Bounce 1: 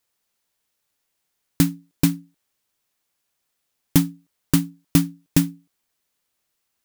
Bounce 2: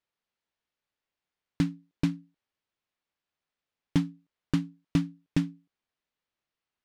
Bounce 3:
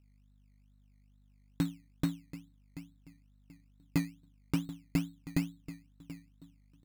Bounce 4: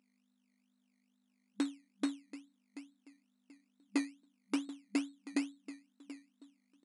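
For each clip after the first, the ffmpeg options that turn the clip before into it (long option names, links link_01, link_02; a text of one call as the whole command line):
ffmpeg -i in.wav -af "lowpass=3600,volume=-8dB" out.wav
ffmpeg -i in.wav -filter_complex "[0:a]asplit=2[link_01][link_02];[link_02]adelay=733,lowpass=frequency=1900:poles=1,volume=-14.5dB,asplit=2[link_03][link_04];[link_04]adelay=733,lowpass=frequency=1900:poles=1,volume=0.29,asplit=2[link_05][link_06];[link_06]adelay=733,lowpass=frequency=1900:poles=1,volume=0.29[link_07];[link_01][link_03][link_05][link_07]amix=inputs=4:normalize=0,aeval=exprs='val(0)+0.00126*(sin(2*PI*50*n/s)+sin(2*PI*2*50*n/s)/2+sin(2*PI*3*50*n/s)/3+sin(2*PI*4*50*n/s)/4+sin(2*PI*5*50*n/s)/5)':channel_layout=same,acrusher=samples=16:mix=1:aa=0.000001:lfo=1:lforange=9.6:lforate=2.3,volume=-5dB" out.wav
ffmpeg -i in.wav -af "afftfilt=real='re*between(b*sr/4096,200,11000)':imag='im*between(b*sr/4096,200,11000)':win_size=4096:overlap=0.75" out.wav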